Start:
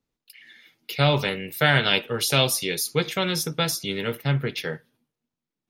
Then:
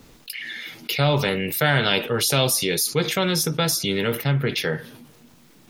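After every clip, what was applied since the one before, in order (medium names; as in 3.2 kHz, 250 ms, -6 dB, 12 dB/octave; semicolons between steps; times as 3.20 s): dynamic bell 2.6 kHz, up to -4 dB, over -32 dBFS, Q 1.1; level flattener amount 50%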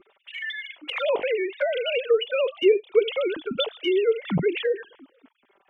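formants replaced by sine waves; touch-sensitive flanger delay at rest 5.3 ms, full sweep at -18.5 dBFS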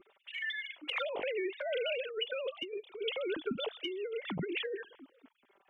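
compressor with a negative ratio -27 dBFS, ratio -1; trim -9 dB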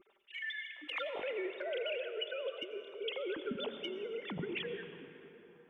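reverberation RT60 3.5 s, pre-delay 78 ms, DRR 8 dB; attacks held to a fixed rise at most 400 dB/s; trim -3.5 dB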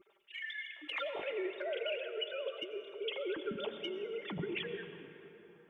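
comb of notches 250 Hz; trim +1.5 dB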